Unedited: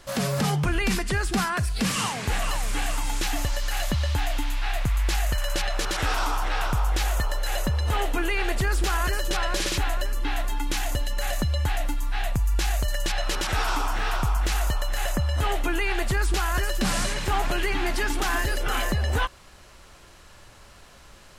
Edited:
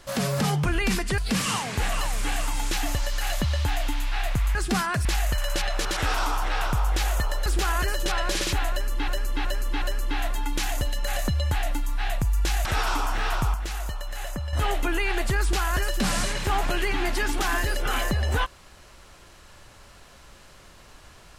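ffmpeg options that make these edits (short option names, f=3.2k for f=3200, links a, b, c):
-filter_complex "[0:a]asplit=11[a][b][c][d][e][f][g][h][i][j][k];[a]atrim=end=1.182[l];[b]atrim=start=1.678:end=5.052[m];[c]atrim=start=1.178:end=1.682[n];[d]atrim=start=5.048:end=7.462[o];[e]atrim=start=8.708:end=10.332[p];[f]atrim=start=9.958:end=10.332[q];[g]atrim=start=9.958:end=10.332[r];[h]atrim=start=9.958:end=12.792[s];[i]atrim=start=13.458:end=14.352[t];[j]atrim=start=14.348:end=15.342,asetpts=PTS-STARTPTS,volume=-6.5dB[u];[k]atrim=start=15.338[v];[l][m]acrossfade=d=0.004:c1=hsin:c2=hsin[w];[w][n]acrossfade=d=0.004:c1=hsin:c2=hsin[x];[x][o]acrossfade=d=0.004:c1=hsin:c2=hsin[y];[y][p]acrossfade=d=0.004:c1=hsin:c2=hsin[z];[z][q]acrossfade=d=0.004:c1=hsin:c2=hsin[aa];[aa][r]acrossfade=d=0.004:c1=hsin:c2=hsin[ab];[ab][s]acrossfade=d=0.004:c1=hsin:c2=hsin[ac];[ac][t]acrossfade=d=0.004:c1=hsin:c2=hsin[ad];[ad][u]acrossfade=d=0.004:c1=hsin:c2=hsin[ae];[ae][v]acrossfade=d=0.004:c1=hsin:c2=hsin"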